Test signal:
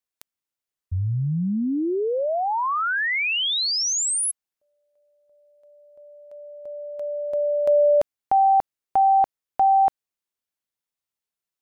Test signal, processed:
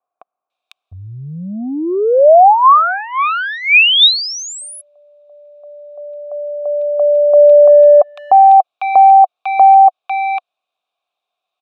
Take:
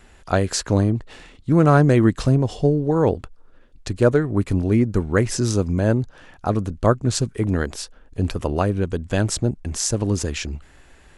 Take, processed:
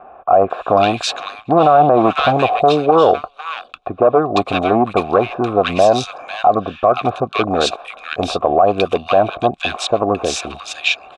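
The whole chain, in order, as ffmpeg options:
ffmpeg -i in.wav -filter_complex "[0:a]asoftclip=type=hard:threshold=-13.5dB,equalizer=frequency=1200:width=0.45:gain=4,acontrast=88,asplit=3[link_01][link_02][link_03];[link_01]bandpass=frequency=730:width_type=q:width=8,volume=0dB[link_04];[link_02]bandpass=frequency=1090:width_type=q:width=8,volume=-6dB[link_05];[link_03]bandpass=frequency=2440:width_type=q:width=8,volume=-9dB[link_06];[link_04][link_05][link_06]amix=inputs=3:normalize=0,equalizer=frequency=3700:width=6.6:gain=14.5,acrossover=split=1500[link_07][link_08];[link_08]adelay=500[link_09];[link_07][link_09]amix=inputs=2:normalize=0,alimiter=level_in=18.5dB:limit=-1dB:release=50:level=0:latency=1,volume=-1dB" out.wav

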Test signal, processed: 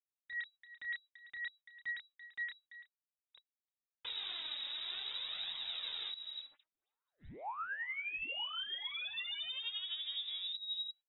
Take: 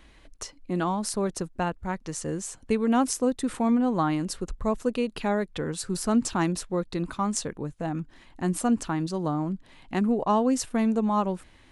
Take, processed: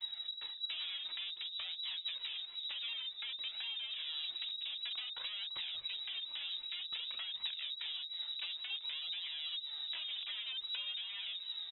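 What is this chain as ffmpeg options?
ffmpeg -i in.wav -filter_complex "[0:a]acrossover=split=420|1800[link_01][link_02][link_03];[link_03]asoftclip=type=hard:threshold=-23dB[link_04];[link_01][link_02][link_04]amix=inputs=3:normalize=0,asplit=2[link_05][link_06];[link_06]adelay=31,volume=-8dB[link_07];[link_05][link_07]amix=inputs=2:normalize=0,acrossover=split=300[link_08][link_09];[link_09]acompressor=threshold=-32dB:ratio=10[link_10];[link_08][link_10]amix=inputs=2:normalize=0,lowshelf=frequency=390:gain=12,asplit=2[link_11][link_12];[link_12]aecho=0:1:339:0.0631[link_13];[link_11][link_13]amix=inputs=2:normalize=0,acompressor=threshold=-27dB:ratio=8,lowshelf=frequency=160:gain=4.5,aeval=exprs='0.0251*(abs(mod(val(0)/0.0251+3,4)-2)-1)':channel_layout=same,alimiter=level_in=14.5dB:limit=-24dB:level=0:latency=1:release=249,volume=-14.5dB,lowpass=frequency=3300:width_type=q:width=0.5098,lowpass=frequency=3300:width_type=q:width=0.6013,lowpass=frequency=3300:width_type=q:width=0.9,lowpass=frequency=3300:width_type=q:width=2.563,afreqshift=-3900,agate=range=-27dB:threshold=-60dB:ratio=16:detection=peak,flanger=delay=0.9:depth=2.8:regen=28:speed=0.54:shape=triangular,volume=5dB" out.wav

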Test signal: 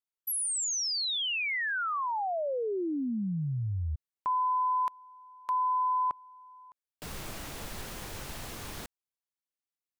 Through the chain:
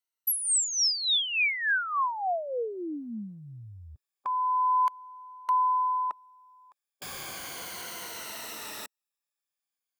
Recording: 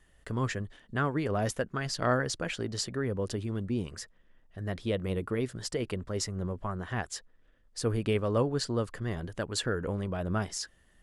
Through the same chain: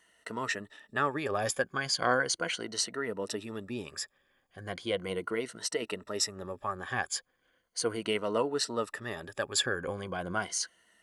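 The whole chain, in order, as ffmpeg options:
ffmpeg -i in.wav -af "afftfilt=real='re*pow(10,11/40*sin(2*PI*(1.9*log(max(b,1)*sr/1024/100)/log(2)-(-0.37)*(pts-256)/sr)))':imag='im*pow(10,11/40*sin(2*PI*(1.9*log(max(b,1)*sr/1024/100)/log(2)-(-0.37)*(pts-256)/sr)))':win_size=1024:overlap=0.75,highpass=frequency=710:poles=1,volume=3dB" out.wav

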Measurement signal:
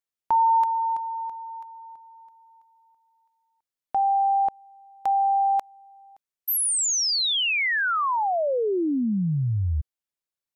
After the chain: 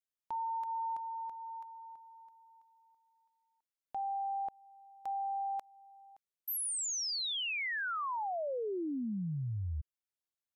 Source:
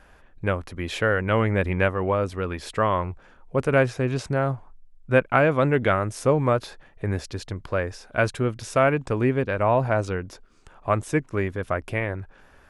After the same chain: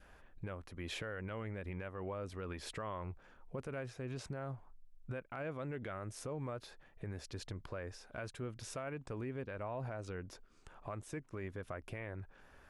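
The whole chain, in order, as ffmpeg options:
ffmpeg -i in.wav -af "adynamicequalizer=threshold=0.0178:dfrequency=960:dqfactor=2.6:tfrequency=960:tqfactor=2.6:attack=5:release=100:ratio=0.375:range=1.5:mode=cutabove:tftype=bell,acompressor=threshold=-23dB:ratio=4:attack=0.25:release=678:knee=6:detection=rms,alimiter=level_in=2dB:limit=-24dB:level=0:latency=1:release=63,volume=-2dB,volume=-7dB" out.wav

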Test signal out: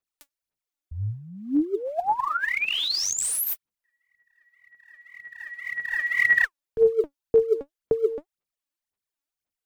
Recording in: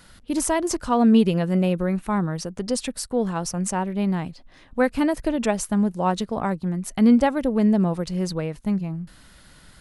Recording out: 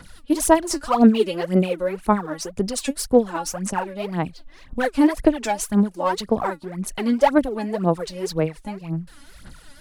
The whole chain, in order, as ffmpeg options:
ffmpeg -i in.wav -filter_complex "[0:a]acrossover=split=240|3100[link_01][link_02][link_03];[link_01]acompressor=threshold=-38dB:ratio=6[link_04];[link_04][link_02][link_03]amix=inputs=3:normalize=0,asoftclip=type=hard:threshold=-12dB,aphaser=in_gain=1:out_gain=1:delay=3.6:decay=0.77:speed=1.9:type=sinusoidal,volume=-1.5dB" out.wav

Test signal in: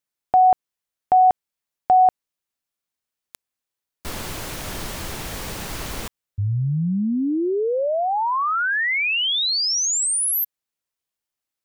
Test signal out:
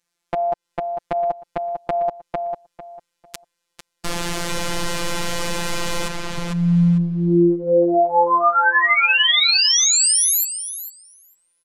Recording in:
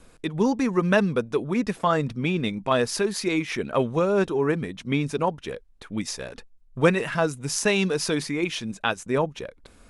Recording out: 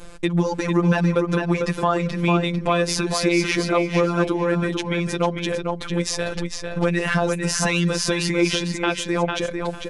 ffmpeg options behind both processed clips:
ffmpeg -i in.wav -filter_complex "[0:a]lowpass=9400,acompressor=threshold=-27dB:ratio=5:attack=3:release=298:knee=6:detection=peak,afftfilt=real='hypot(re,im)*cos(PI*b)':imag='0':win_size=1024:overlap=0.75,asplit=2[link_01][link_02];[link_02]adelay=449,lowpass=frequency=4700:poles=1,volume=-5dB,asplit=2[link_03][link_04];[link_04]adelay=449,lowpass=frequency=4700:poles=1,volume=0.22,asplit=2[link_05][link_06];[link_06]adelay=449,lowpass=frequency=4700:poles=1,volume=0.22[link_07];[link_01][link_03][link_05][link_07]amix=inputs=4:normalize=0,alimiter=level_in=20.5dB:limit=-1dB:release=50:level=0:latency=1,volume=-5.5dB" out.wav

